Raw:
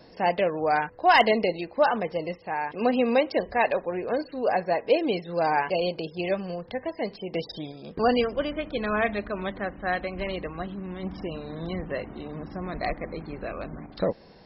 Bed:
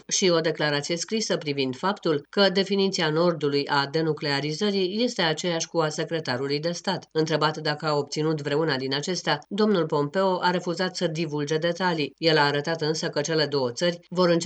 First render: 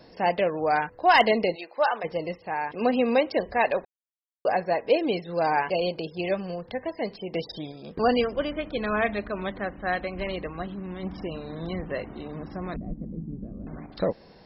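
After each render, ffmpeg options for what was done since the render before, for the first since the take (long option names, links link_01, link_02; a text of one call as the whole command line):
ffmpeg -i in.wav -filter_complex "[0:a]asplit=3[link_01][link_02][link_03];[link_01]afade=type=out:start_time=1.54:duration=0.02[link_04];[link_02]highpass=580,afade=type=in:start_time=1.54:duration=0.02,afade=type=out:start_time=2.03:duration=0.02[link_05];[link_03]afade=type=in:start_time=2.03:duration=0.02[link_06];[link_04][link_05][link_06]amix=inputs=3:normalize=0,asettb=1/sr,asplit=3[link_07][link_08][link_09];[link_07]atrim=end=12.764[link_10];[link_08]atrim=start=12.76:end=13.67,asetpts=PTS-STARTPTS,afade=type=in:duration=0.004:curve=qsin,afade=type=out:start_time=0.906:duration=0.004:curve=qsin,lowpass=frequency=210:width_type=q:width=2.2[link_11];[link_09]atrim=start=13.666[link_12];[link_10][link_11]acrossfade=duration=0.004:curve1=hsin:curve2=qsin[link_13];[link_13][link_12]acrossfade=duration=0.004:curve1=qsin:curve2=hsin,asplit=3[link_14][link_15][link_16];[link_14]atrim=end=3.85,asetpts=PTS-STARTPTS,afade=type=out:start_time=3.846:duration=0.004:curve=hsin[link_17];[link_15]atrim=start=3.85:end=4.45,asetpts=PTS-STARTPTS,volume=0[link_18];[link_16]atrim=start=4.45,asetpts=PTS-STARTPTS,afade=type=in:duration=0.004:curve=hsin[link_19];[link_17][link_18][link_19]concat=n=3:v=0:a=1" out.wav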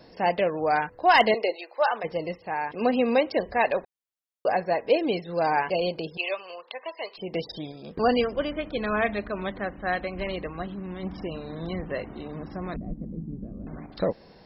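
ffmpeg -i in.wav -filter_complex "[0:a]asettb=1/sr,asplit=3[link_01][link_02][link_03];[link_01]atrim=end=1.344[link_04];[link_02]atrim=start=1.34:end=1.91,asetpts=PTS-STARTPTS,afade=type=in:duration=0.004:curve=qsin,afade=type=out:start_time=0.566:duration=0.004:curve=qsin,highpass=frequency=360:width=0.5412,highpass=frequency=360:width=1.3066[link_05];[link_03]atrim=start=1.906[link_06];[link_04][link_05]acrossfade=duration=0.004:curve1=hsin:curve2=qsin[link_07];[link_07][link_06]acrossfade=duration=0.004:curve1=qsin:curve2=hsin,asettb=1/sr,asplit=3[link_08][link_09][link_10];[link_08]atrim=end=6.174[link_11];[link_09]atrim=start=6.17:end=7.18,asetpts=PTS-STARTPTS,afade=type=in:duration=0.004:curve=qsin,afade=type=out:start_time=1.006:duration=0.004:curve=qsin,highpass=frequency=490:width=0.5412,highpass=frequency=490:width=1.3066,equalizer=frequency=500:width_type=q:width=4:gain=-5,equalizer=frequency=740:width_type=q:width=4:gain=-5,equalizer=frequency=1100:width_type=q:width=4:gain=7,equalizer=frequency=1700:width_type=q:width=4:gain=-6,equalizer=frequency=2700:width_type=q:width=4:gain=9,equalizer=frequency=3900:width_type=q:width=4:gain=5,lowpass=frequency=4400:width=0.5412,lowpass=frequency=4400:width=1.3066[link_12];[link_10]atrim=start=7.176[link_13];[link_11][link_12]acrossfade=duration=0.004:curve1=hsin:curve2=qsin[link_14];[link_14][link_13]acrossfade=duration=0.004:curve1=qsin:curve2=hsin" out.wav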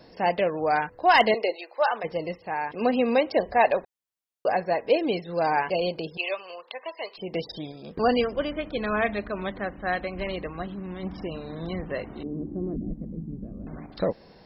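ffmpeg -i in.wav -filter_complex "[0:a]asettb=1/sr,asplit=3[link_01][link_02][link_03];[link_01]atrim=end=3.294[link_04];[link_02]atrim=start=3.29:end=3.75,asetpts=PTS-STARTPTS,afade=type=in:duration=0.004:curve=qsin,afade=type=out:start_time=0.456:duration=0.004:curve=qsin,equalizer=frequency=720:width_type=o:width=0.77:gain=5[link_05];[link_03]atrim=start=3.746[link_06];[link_04][link_05]acrossfade=duration=0.004:curve1=hsin:curve2=qsin[link_07];[link_07][link_06]acrossfade=duration=0.004:curve1=qsin:curve2=hsin,asettb=1/sr,asplit=3[link_08][link_09][link_10];[link_08]atrim=end=12.234[link_11];[link_09]atrim=start=12.23:end=12.91,asetpts=PTS-STARTPTS,afade=type=in:duration=0.004:curve=qsin,afade=type=out:start_time=0.676:duration=0.004:curve=qsin,lowpass=frequency=340:width_type=q:width=2.5[link_12];[link_10]atrim=start=12.906[link_13];[link_11][link_12]acrossfade=duration=0.004:curve1=hsin:curve2=qsin[link_14];[link_14][link_13]acrossfade=duration=0.004:curve1=qsin:curve2=hsin" out.wav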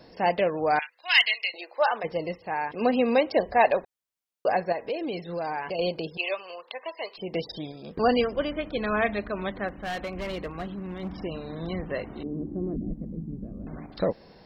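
ffmpeg -i in.wav -filter_complex "[0:a]asettb=1/sr,asplit=3[link_01][link_02][link_03];[link_01]atrim=end=0.794[link_04];[link_02]atrim=start=0.79:end=1.54,asetpts=PTS-STARTPTS,afade=type=in:duration=0.004:curve=qsin,afade=type=out:start_time=0.746:duration=0.004:curve=qsin,highpass=frequency=2500:width_type=q:width=2.5[link_05];[link_03]atrim=start=1.536[link_06];[link_04][link_05]acrossfade=duration=0.004:curve1=hsin:curve2=qsin[link_07];[link_07][link_06]acrossfade=duration=0.004:curve1=qsin:curve2=hsin,asettb=1/sr,asplit=3[link_08][link_09][link_10];[link_08]atrim=end=4.724[link_11];[link_09]atrim=start=4.72:end=5.79,asetpts=PTS-STARTPTS,afade=type=in:duration=0.004:curve=qsin,afade=type=out:start_time=1.066:duration=0.004:curve=qsin,acompressor=threshold=-29dB:ratio=3:attack=3.2:release=140:knee=1:detection=peak[link_12];[link_10]atrim=start=5.786[link_13];[link_11][link_12]acrossfade=duration=0.004:curve1=hsin:curve2=qsin[link_14];[link_14][link_13]acrossfade=duration=0.004:curve1=qsin:curve2=hsin,asettb=1/sr,asplit=3[link_15][link_16][link_17];[link_15]atrim=end=9.684[link_18];[link_16]atrim=start=9.68:end=11.09,asetpts=PTS-STARTPTS,afade=type=in:duration=0.004:curve=qsin,afade=type=out:start_time=1.406:duration=0.004:curve=qsin,asoftclip=type=hard:threshold=-28.5dB[link_19];[link_17]atrim=start=11.086[link_20];[link_18][link_19]acrossfade=duration=0.004:curve1=hsin:curve2=qsin[link_21];[link_21][link_20]acrossfade=duration=0.004:curve1=qsin:curve2=hsin" out.wav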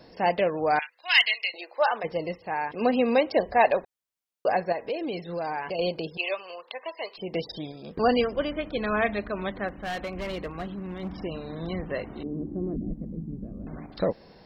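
ffmpeg -i in.wav -af anull out.wav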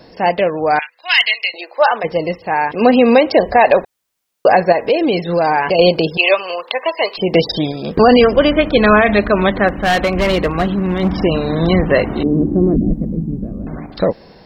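ffmpeg -i in.wav -af "dynaudnorm=framelen=390:gausssize=11:maxgain=11.5dB,alimiter=level_in=9dB:limit=-1dB:release=50:level=0:latency=1" out.wav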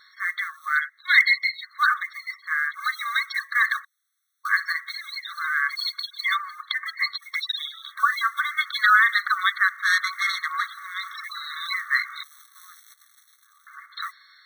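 ffmpeg -i in.wav -af "acrusher=bits=9:mode=log:mix=0:aa=0.000001,afftfilt=real='re*eq(mod(floor(b*sr/1024/1100),2),1)':imag='im*eq(mod(floor(b*sr/1024/1100),2),1)':win_size=1024:overlap=0.75" out.wav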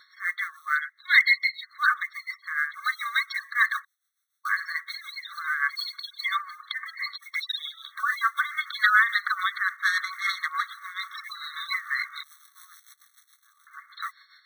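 ffmpeg -i in.wav -filter_complex "[0:a]tremolo=f=6.9:d=0.63,acrossover=split=2700|4700|7600[link_01][link_02][link_03][link_04];[link_03]asoftclip=type=tanh:threshold=-39.5dB[link_05];[link_01][link_02][link_05][link_04]amix=inputs=4:normalize=0" out.wav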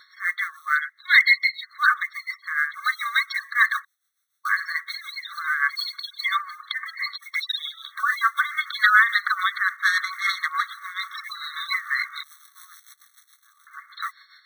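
ffmpeg -i in.wav -af "volume=3.5dB,alimiter=limit=-3dB:level=0:latency=1" out.wav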